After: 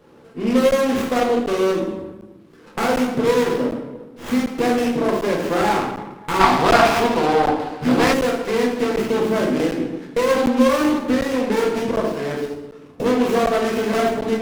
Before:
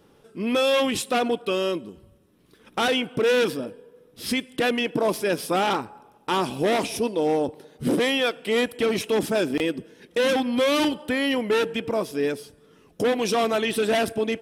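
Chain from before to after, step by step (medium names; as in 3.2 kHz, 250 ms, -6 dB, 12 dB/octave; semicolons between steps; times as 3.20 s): tracing distortion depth 0.45 ms; compression, threshold -24 dBFS, peak gain reduction 6 dB; high-pass 120 Hz; treble shelf 7.8 kHz -7 dB; reverberation RT60 1.1 s, pre-delay 4 ms, DRR -4 dB; time-frequency box 6.40–8.13 s, 630–5100 Hz +10 dB; crackling interface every 0.75 s, samples 512, zero, from 0.71 s; sliding maximum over 9 samples; trim +3.5 dB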